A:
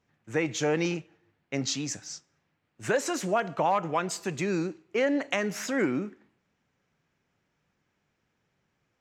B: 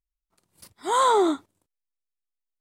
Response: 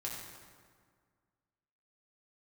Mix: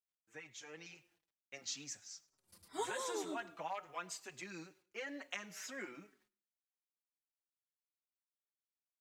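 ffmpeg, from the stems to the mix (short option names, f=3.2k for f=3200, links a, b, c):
-filter_complex "[0:a]tiltshelf=f=750:g=-7.5,acrusher=bits=9:mix=0:aa=0.000001,volume=-15.5dB,afade=t=in:st=0.85:d=0.3:silence=0.473151,asplit=3[a][b][c];[b]volume=-23.5dB[d];[1:a]acrossover=split=470|3000[e][f][g];[f]acompressor=threshold=-32dB:ratio=6[h];[e][h][g]amix=inputs=3:normalize=0,adelay=1900,volume=-6dB,asplit=2[i][j];[j]volume=-7.5dB[k];[c]apad=whole_len=198757[l];[i][l]sidechaincompress=threshold=-59dB:ratio=8:attack=44:release=632[m];[d][k]amix=inputs=2:normalize=0,aecho=0:1:104|208|312|416:1|0.27|0.0729|0.0197[n];[a][m][n]amix=inputs=3:normalize=0,asplit=2[o][p];[p]adelay=4.9,afreqshift=-2.1[q];[o][q]amix=inputs=2:normalize=1"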